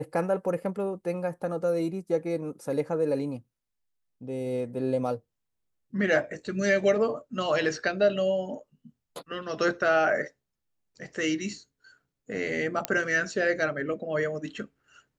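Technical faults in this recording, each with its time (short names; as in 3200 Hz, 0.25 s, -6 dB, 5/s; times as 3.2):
12.85 pop -9 dBFS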